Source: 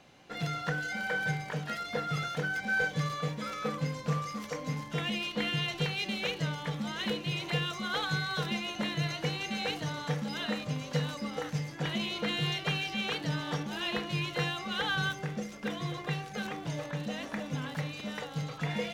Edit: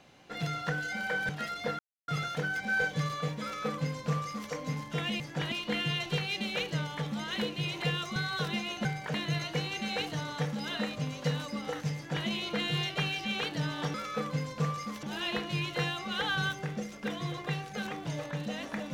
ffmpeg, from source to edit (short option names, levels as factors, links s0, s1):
-filter_complex "[0:a]asplit=10[s0][s1][s2][s3][s4][s5][s6][s7][s8][s9];[s0]atrim=end=1.292[s10];[s1]atrim=start=1.578:end=2.08,asetpts=PTS-STARTPTS,afade=t=out:st=0.498:d=0.004:c=hsin,apad=pad_dur=0.29[s11];[s2]atrim=start=2.08:end=5.202,asetpts=PTS-STARTPTS,afade=t=in:d=0.004:c=hsin[s12];[s3]atrim=start=11.638:end=11.962[s13];[s4]atrim=start=5.198:end=7.842[s14];[s5]atrim=start=8.138:end=8.832[s15];[s6]atrim=start=1.288:end=1.582[s16];[s7]atrim=start=8.828:end=13.632[s17];[s8]atrim=start=3.418:end=4.512[s18];[s9]atrim=start=13.628[s19];[s11][s12]concat=n=2:v=0:a=1[s20];[s10][s20]acrossfade=d=0.004:c1=hsin:c2=hsin[s21];[s21][s13]acrossfade=d=0.004:c1=hsin:c2=hsin[s22];[s22][s14]acrossfade=d=0.004:c1=hsin:c2=hsin[s23];[s23][s15]acrossfade=d=0.004:c1=hsin:c2=hsin[s24];[s24][s16]acrossfade=d=0.004:c1=hsin:c2=hsin[s25];[s25][s17]acrossfade=d=0.004:c1=hsin:c2=hsin[s26];[s26][s18]acrossfade=d=0.004:c1=hsin:c2=hsin[s27];[s27][s19]acrossfade=d=0.004:c1=hsin:c2=hsin"